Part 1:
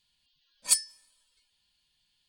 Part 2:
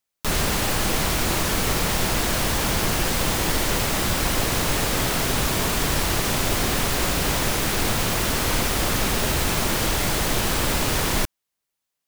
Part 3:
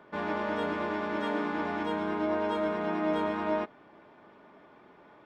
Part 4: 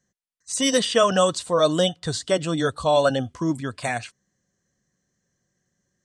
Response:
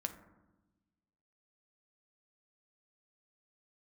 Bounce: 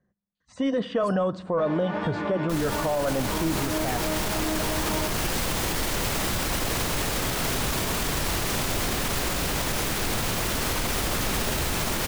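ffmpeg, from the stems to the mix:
-filter_complex "[0:a]acompressor=threshold=0.0178:ratio=1.5,bandpass=f=3000:t=q:w=0.83:csg=0,adelay=350,volume=0.168[s0];[1:a]dynaudnorm=f=160:g=17:m=3.76,adelay=2250,volume=0.398[s1];[2:a]flanger=delay=22.5:depth=3.4:speed=1.5,adelay=1450,volume=1.26,asplit=2[s2][s3];[s3]volume=0.531[s4];[3:a]asoftclip=type=tanh:threshold=0.376,acompressor=threshold=0.0891:ratio=4,lowpass=1300,volume=1.12,asplit=3[s5][s6][s7];[s6]volume=0.376[s8];[s7]apad=whole_len=295510[s9];[s2][s9]sidechaincompress=threshold=0.0316:ratio=8:attack=16:release=143[s10];[4:a]atrim=start_sample=2205[s11];[s4][s8]amix=inputs=2:normalize=0[s12];[s12][s11]afir=irnorm=-1:irlink=0[s13];[s0][s1][s10][s5][s13]amix=inputs=5:normalize=0,alimiter=limit=0.141:level=0:latency=1:release=38"

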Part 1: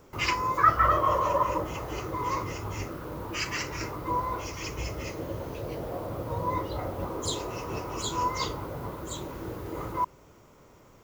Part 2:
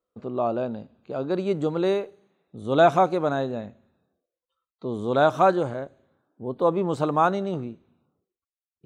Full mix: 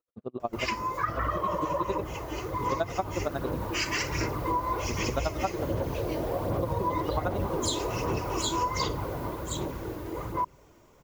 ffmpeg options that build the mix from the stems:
-filter_complex "[0:a]bandreject=f=1300:w=12,dynaudnorm=f=450:g=11:m=2.66,aphaser=in_gain=1:out_gain=1:delay=3.3:decay=0.37:speed=1.3:type=sinusoidal,adelay=400,volume=0.668[s0];[1:a]aeval=exprs='val(0)*pow(10,-39*(0.5-0.5*cos(2*PI*11*n/s))/20)':c=same,volume=0.891[s1];[s0][s1]amix=inputs=2:normalize=0,acompressor=threshold=0.0562:ratio=5"

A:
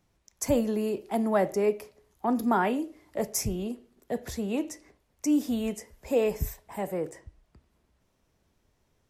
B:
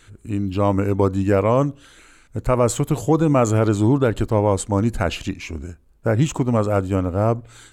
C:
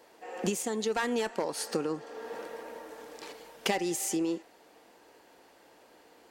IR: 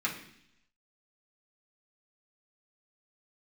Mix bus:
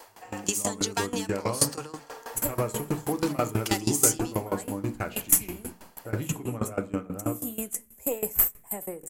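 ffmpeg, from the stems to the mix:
-filter_complex "[0:a]aexciter=amount=10.3:drive=7.7:freq=7300,aeval=exprs='1.5*(cos(1*acos(clip(val(0)/1.5,-1,1)))-cos(1*PI/2))+0.075*(cos(8*acos(clip(val(0)/1.5,-1,1)))-cos(8*PI/2))':c=same,adelay=1950,volume=0.944,asplit=2[s0][s1];[s1]volume=0.106[s2];[1:a]bandreject=f=68.52:t=h:w=4,bandreject=f=137.04:t=h:w=4,bandreject=f=205.56:t=h:w=4,bandreject=f=274.08:t=h:w=4,bandreject=f=342.6:t=h:w=4,bandreject=f=411.12:t=h:w=4,bandreject=f=479.64:t=h:w=4,bandreject=f=548.16:t=h:w=4,bandreject=f=616.68:t=h:w=4,bandreject=f=685.2:t=h:w=4,bandreject=f=753.72:t=h:w=4,bandreject=f=822.24:t=h:w=4,bandreject=f=890.76:t=h:w=4,bandreject=f=959.28:t=h:w=4,bandreject=f=1027.8:t=h:w=4,bandreject=f=1096.32:t=h:w=4,bandreject=f=1164.84:t=h:w=4,bandreject=f=1233.36:t=h:w=4,bandreject=f=1301.88:t=h:w=4,bandreject=f=1370.4:t=h:w=4,bandreject=f=1438.92:t=h:w=4,bandreject=f=1507.44:t=h:w=4,bandreject=f=1575.96:t=h:w=4,bandreject=f=1644.48:t=h:w=4,bandreject=f=1713:t=h:w=4,bandreject=f=1781.52:t=h:w=4,bandreject=f=1850.04:t=h:w=4,bandreject=f=1918.56:t=h:w=4,bandreject=f=1987.08:t=h:w=4,bandreject=f=2055.6:t=h:w=4,bandreject=f=2124.12:t=h:w=4,bandreject=f=2192.64:t=h:w=4,bandreject=f=2261.16:t=h:w=4,bandreject=f=2329.68:t=h:w=4,bandreject=f=2398.2:t=h:w=4,bandreject=f=2466.72:t=h:w=4,dynaudnorm=f=170:g=11:m=3.76,volume=0.251,asplit=3[s3][s4][s5];[s4]volume=0.422[s6];[2:a]equalizer=f=1000:w=0.87:g=12,acrossover=split=240|3000[s7][s8][s9];[s8]acompressor=threshold=0.0126:ratio=2[s10];[s7][s10][s9]amix=inputs=3:normalize=0,crystalizer=i=5:c=0,volume=1.19[s11];[s5]apad=whole_len=486973[s12];[s0][s12]sidechaincompress=threshold=0.0251:ratio=8:attack=16:release=265[s13];[3:a]atrim=start_sample=2205[s14];[s2][s6]amix=inputs=2:normalize=0[s15];[s15][s14]afir=irnorm=-1:irlink=0[s16];[s13][s3][s11][s16]amix=inputs=4:normalize=0,bandreject=f=3700:w=20,aeval=exprs='val(0)*pow(10,-19*if(lt(mod(6.2*n/s,1),2*abs(6.2)/1000),1-mod(6.2*n/s,1)/(2*abs(6.2)/1000),(mod(6.2*n/s,1)-2*abs(6.2)/1000)/(1-2*abs(6.2)/1000))/20)':c=same"

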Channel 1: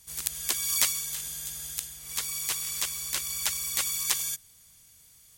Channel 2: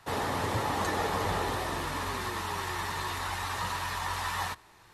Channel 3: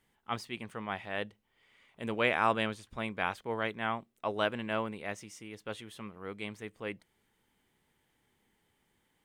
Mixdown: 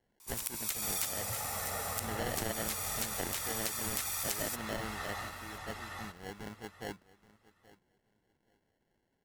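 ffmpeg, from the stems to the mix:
-filter_complex "[0:a]highshelf=f=8400:g=5.5,aeval=exprs='val(0)*sin(2*PI*1000*n/s)':c=same,adelay=200,volume=0.794[s0];[1:a]aecho=1:1:1.5:0.79,adelay=750,volume=0.251,asplit=2[s1][s2];[s2]volume=0.708[s3];[2:a]highshelf=f=4900:g=-6.5,acrusher=samples=36:mix=1:aa=0.000001,volume=0.668,asplit=2[s4][s5];[s5]volume=0.1[s6];[s3][s6]amix=inputs=2:normalize=0,aecho=0:1:826|1652|2478:1|0.19|0.0361[s7];[s0][s1][s4][s7]amix=inputs=4:normalize=0,equalizer=f=1800:w=1.1:g=3.5,acompressor=threshold=0.0224:ratio=3"

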